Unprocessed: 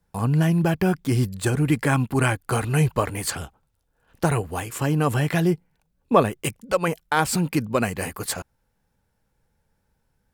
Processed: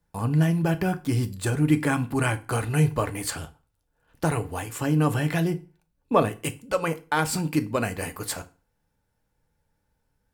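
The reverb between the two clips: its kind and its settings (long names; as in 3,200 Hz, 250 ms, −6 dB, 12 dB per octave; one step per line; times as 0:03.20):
feedback delay network reverb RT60 0.34 s, low-frequency decay 1.1×, high-frequency decay 0.9×, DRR 8.5 dB
level −3.5 dB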